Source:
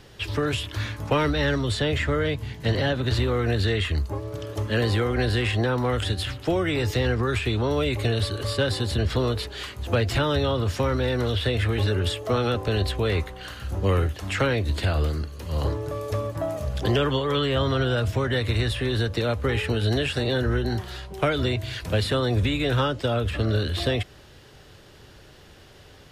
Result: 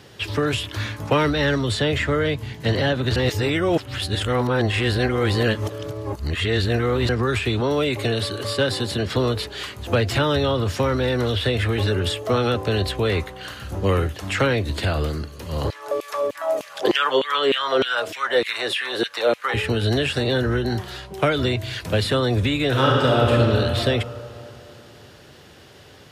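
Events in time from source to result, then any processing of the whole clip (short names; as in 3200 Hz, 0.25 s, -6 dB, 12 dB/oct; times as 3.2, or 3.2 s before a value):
3.16–7.09 reverse
7.6–9.16 HPF 120 Hz
15.7–19.54 LFO high-pass saw down 3.3 Hz 300–2900 Hz
22.68–23.32 reverb throw, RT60 3 s, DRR -3 dB
whole clip: HPF 95 Hz; gain +3.5 dB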